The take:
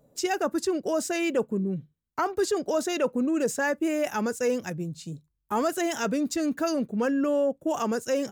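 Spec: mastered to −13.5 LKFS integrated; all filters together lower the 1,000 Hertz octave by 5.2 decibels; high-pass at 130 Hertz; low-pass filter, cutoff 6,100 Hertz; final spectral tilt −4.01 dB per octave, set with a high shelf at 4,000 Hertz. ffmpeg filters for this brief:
ffmpeg -i in.wav -af "highpass=130,lowpass=6100,equalizer=frequency=1000:width_type=o:gain=-8,highshelf=frequency=4000:gain=7,volume=15dB" out.wav

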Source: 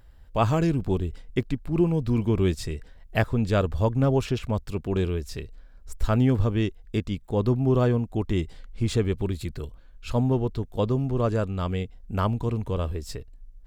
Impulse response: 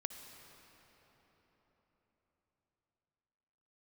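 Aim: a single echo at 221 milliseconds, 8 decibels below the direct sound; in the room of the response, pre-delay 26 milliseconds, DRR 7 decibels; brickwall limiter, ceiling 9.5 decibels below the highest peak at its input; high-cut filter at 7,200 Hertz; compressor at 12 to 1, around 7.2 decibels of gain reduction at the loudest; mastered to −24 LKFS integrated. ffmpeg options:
-filter_complex "[0:a]lowpass=7200,acompressor=threshold=-24dB:ratio=12,alimiter=limit=-24dB:level=0:latency=1,aecho=1:1:221:0.398,asplit=2[link_01][link_02];[1:a]atrim=start_sample=2205,adelay=26[link_03];[link_02][link_03]afir=irnorm=-1:irlink=0,volume=-5.5dB[link_04];[link_01][link_04]amix=inputs=2:normalize=0,volume=9.5dB"

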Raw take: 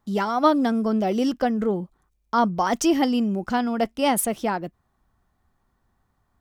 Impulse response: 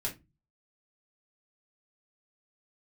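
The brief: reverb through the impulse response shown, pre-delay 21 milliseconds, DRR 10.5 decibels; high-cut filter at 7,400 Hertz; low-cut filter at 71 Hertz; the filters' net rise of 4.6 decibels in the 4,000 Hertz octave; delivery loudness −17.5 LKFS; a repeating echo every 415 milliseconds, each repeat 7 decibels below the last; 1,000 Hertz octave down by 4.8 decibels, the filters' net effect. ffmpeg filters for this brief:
-filter_complex "[0:a]highpass=71,lowpass=7400,equalizer=frequency=1000:width_type=o:gain=-7,equalizer=frequency=4000:width_type=o:gain=7.5,aecho=1:1:415|830|1245|1660|2075:0.447|0.201|0.0905|0.0407|0.0183,asplit=2[link_01][link_02];[1:a]atrim=start_sample=2205,adelay=21[link_03];[link_02][link_03]afir=irnorm=-1:irlink=0,volume=-13dB[link_04];[link_01][link_04]amix=inputs=2:normalize=0,volume=5.5dB"

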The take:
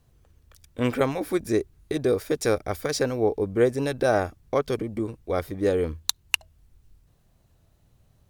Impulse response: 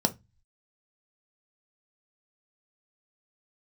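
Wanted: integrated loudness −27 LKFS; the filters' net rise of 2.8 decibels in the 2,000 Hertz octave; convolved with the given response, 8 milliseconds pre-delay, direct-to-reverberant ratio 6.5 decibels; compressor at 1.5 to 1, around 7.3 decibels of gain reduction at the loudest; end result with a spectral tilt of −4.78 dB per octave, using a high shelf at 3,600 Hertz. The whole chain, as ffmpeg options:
-filter_complex "[0:a]equalizer=frequency=2000:width_type=o:gain=5,highshelf=frequency=3600:gain=-3.5,acompressor=threshold=-38dB:ratio=1.5,asplit=2[link_01][link_02];[1:a]atrim=start_sample=2205,adelay=8[link_03];[link_02][link_03]afir=irnorm=-1:irlink=0,volume=-15.5dB[link_04];[link_01][link_04]amix=inputs=2:normalize=0,volume=3.5dB"

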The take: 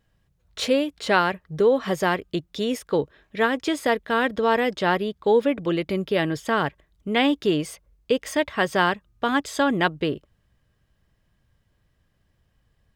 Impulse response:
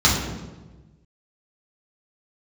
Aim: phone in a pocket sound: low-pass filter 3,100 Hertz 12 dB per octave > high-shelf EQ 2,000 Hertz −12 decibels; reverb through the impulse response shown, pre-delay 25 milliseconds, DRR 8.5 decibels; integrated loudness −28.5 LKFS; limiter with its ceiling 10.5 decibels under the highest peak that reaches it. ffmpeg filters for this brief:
-filter_complex "[0:a]alimiter=limit=-16.5dB:level=0:latency=1,asplit=2[link_01][link_02];[1:a]atrim=start_sample=2205,adelay=25[link_03];[link_02][link_03]afir=irnorm=-1:irlink=0,volume=-29dB[link_04];[link_01][link_04]amix=inputs=2:normalize=0,lowpass=3100,highshelf=frequency=2000:gain=-12,volume=-0.5dB"

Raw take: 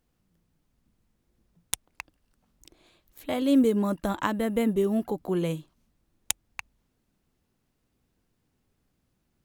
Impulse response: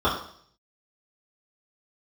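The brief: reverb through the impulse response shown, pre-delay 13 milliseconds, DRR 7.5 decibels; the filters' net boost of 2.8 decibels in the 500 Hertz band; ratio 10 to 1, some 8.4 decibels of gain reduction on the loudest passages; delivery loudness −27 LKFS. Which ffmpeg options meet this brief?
-filter_complex "[0:a]equalizer=frequency=500:width_type=o:gain=3.5,acompressor=threshold=-24dB:ratio=10,asplit=2[link_01][link_02];[1:a]atrim=start_sample=2205,adelay=13[link_03];[link_02][link_03]afir=irnorm=-1:irlink=0,volume=-25dB[link_04];[link_01][link_04]amix=inputs=2:normalize=0,volume=3.5dB"

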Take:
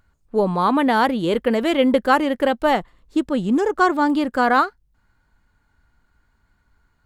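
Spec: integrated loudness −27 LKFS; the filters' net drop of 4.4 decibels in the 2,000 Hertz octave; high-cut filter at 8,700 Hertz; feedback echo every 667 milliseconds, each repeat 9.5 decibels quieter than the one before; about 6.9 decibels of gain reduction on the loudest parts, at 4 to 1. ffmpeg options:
ffmpeg -i in.wav -af "lowpass=8700,equalizer=frequency=2000:width_type=o:gain=-6.5,acompressor=threshold=-21dB:ratio=4,aecho=1:1:667|1334|2001|2668:0.335|0.111|0.0365|0.012,volume=-1.5dB" out.wav

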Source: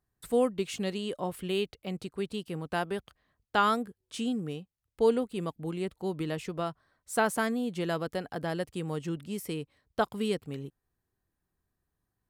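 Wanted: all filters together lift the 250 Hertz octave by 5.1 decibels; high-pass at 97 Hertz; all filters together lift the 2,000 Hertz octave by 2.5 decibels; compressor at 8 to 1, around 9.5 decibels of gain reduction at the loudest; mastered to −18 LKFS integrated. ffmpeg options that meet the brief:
ffmpeg -i in.wav -af "highpass=97,equalizer=frequency=250:width_type=o:gain=6.5,equalizer=frequency=2000:width_type=o:gain=3.5,acompressor=threshold=-27dB:ratio=8,volume=16dB" out.wav

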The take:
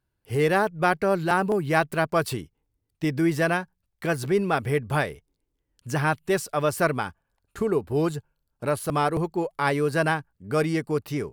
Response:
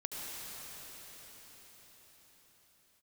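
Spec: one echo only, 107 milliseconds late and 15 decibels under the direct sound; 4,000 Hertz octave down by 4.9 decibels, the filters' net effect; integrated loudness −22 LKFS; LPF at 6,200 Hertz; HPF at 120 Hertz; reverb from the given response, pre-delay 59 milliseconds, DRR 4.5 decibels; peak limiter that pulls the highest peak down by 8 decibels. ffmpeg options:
-filter_complex "[0:a]highpass=120,lowpass=6200,equalizer=frequency=4000:width_type=o:gain=-6,alimiter=limit=-15dB:level=0:latency=1,aecho=1:1:107:0.178,asplit=2[link_01][link_02];[1:a]atrim=start_sample=2205,adelay=59[link_03];[link_02][link_03]afir=irnorm=-1:irlink=0,volume=-7dB[link_04];[link_01][link_04]amix=inputs=2:normalize=0,volume=5dB"

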